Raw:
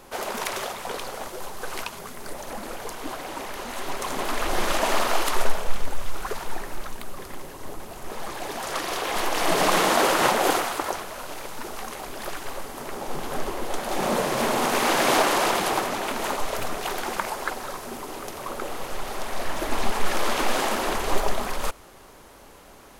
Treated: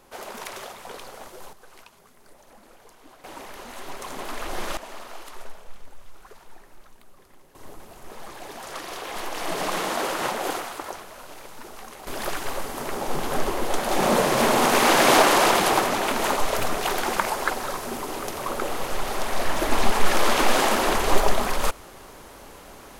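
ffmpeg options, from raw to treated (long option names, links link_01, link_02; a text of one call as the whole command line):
ffmpeg -i in.wav -af "asetnsamples=nb_out_samples=441:pad=0,asendcmd='1.53 volume volume -17dB;3.24 volume volume -6dB;4.77 volume volume -17dB;7.55 volume volume -6.5dB;12.07 volume volume 4dB',volume=-7dB" out.wav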